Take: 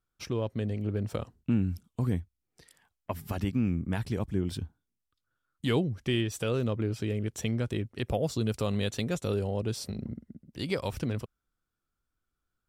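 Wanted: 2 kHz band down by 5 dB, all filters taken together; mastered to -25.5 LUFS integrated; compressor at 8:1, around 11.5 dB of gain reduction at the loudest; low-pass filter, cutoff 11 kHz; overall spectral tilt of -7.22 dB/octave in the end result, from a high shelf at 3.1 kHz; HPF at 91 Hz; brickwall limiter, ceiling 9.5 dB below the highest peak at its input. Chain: high-pass 91 Hz; low-pass 11 kHz; peaking EQ 2 kHz -3.5 dB; treble shelf 3.1 kHz -7.5 dB; compression 8:1, threshold -35 dBFS; trim +18 dB; peak limiter -13.5 dBFS

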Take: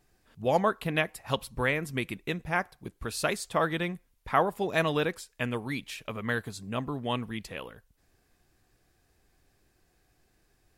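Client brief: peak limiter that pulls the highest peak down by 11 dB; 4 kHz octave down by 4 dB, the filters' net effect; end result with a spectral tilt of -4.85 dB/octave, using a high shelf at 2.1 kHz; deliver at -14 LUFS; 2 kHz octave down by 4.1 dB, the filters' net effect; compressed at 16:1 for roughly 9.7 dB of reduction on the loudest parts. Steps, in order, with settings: peaking EQ 2 kHz -5.5 dB; treble shelf 2.1 kHz +3 dB; peaking EQ 4 kHz -6 dB; compression 16:1, threshold -29 dBFS; trim +25 dB; peak limiter -2 dBFS

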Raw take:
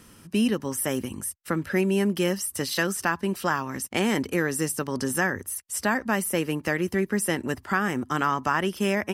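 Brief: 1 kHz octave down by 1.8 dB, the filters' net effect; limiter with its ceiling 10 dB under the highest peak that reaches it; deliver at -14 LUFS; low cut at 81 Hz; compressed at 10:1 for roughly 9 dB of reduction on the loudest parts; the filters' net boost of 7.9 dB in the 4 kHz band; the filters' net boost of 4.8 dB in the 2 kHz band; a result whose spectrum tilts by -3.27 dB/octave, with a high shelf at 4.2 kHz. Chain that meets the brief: high-pass 81 Hz; peaking EQ 1 kHz -5 dB; peaking EQ 2 kHz +5 dB; peaking EQ 4 kHz +4.5 dB; treble shelf 4.2 kHz +8.5 dB; compression 10:1, threshold -26 dBFS; trim +18.5 dB; peak limiter -3.5 dBFS

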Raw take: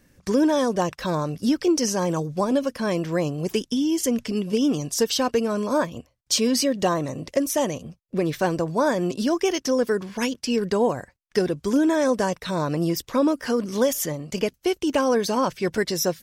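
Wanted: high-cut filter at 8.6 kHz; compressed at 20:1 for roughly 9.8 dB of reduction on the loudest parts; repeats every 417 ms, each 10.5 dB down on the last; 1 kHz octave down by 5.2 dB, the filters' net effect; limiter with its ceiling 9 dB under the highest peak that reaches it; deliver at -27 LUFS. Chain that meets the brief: low-pass 8.6 kHz; peaking EQ 1 kHz -6.5 dB; compression 20:1, threshold -26 dBFS; peak limiter -24 dBFS; feedback delay 417 ms, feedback 30%, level -10.5 dB; trim +6 dB

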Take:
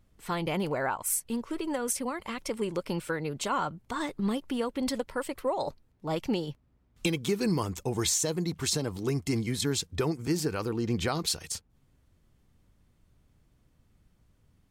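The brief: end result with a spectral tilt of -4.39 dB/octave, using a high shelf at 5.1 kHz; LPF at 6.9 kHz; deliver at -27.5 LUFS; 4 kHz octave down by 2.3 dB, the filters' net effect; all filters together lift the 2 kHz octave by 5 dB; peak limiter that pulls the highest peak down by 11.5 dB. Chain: low-pass 6.9 kHz; peaking EQ 2 kHz +7.5 dB; peaking EQ 4 kHz -7.5 dB; treble shelf 5.1 kHz +6.5 dB; trim +8.5 dB; peak limiter -18 dBFS

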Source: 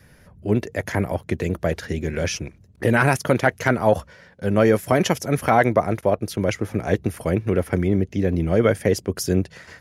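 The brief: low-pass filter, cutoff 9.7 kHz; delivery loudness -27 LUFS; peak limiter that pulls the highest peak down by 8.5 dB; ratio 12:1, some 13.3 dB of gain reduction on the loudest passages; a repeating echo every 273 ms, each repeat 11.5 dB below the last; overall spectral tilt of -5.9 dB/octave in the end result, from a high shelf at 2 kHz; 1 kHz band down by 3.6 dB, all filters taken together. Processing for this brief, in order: low-pass 9.7 kHz; peaking EQ 1 kHz -4.5 dB; treble shelf 2 kHz -4 dB; compression 12:1, threshold -27 dBFS; peak limiter -23 dBFS; feedback delay 273 ms, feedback 27%, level -11.5 dB; trim +8.5 dB

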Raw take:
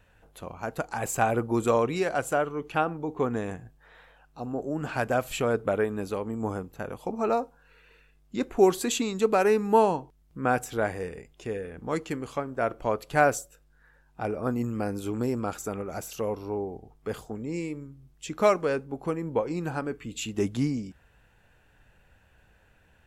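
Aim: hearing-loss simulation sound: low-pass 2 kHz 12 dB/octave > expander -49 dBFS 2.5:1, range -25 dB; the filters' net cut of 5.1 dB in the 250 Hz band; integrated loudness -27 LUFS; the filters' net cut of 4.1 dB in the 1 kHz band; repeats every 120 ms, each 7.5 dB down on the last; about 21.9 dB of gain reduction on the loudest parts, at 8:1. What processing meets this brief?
peaking EQ 250 Hz -6.5 dB; peaking EQ 1 kHz -5 dB; compression 8:1, threshold -42 dBFS; low-pass 2 kHz 12 dB/octave; feedback delay 120 ms, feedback 42%, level -7.5 dB; expander -49 dBFS 2.5:1, range -25 dB; trim +19.5 dB

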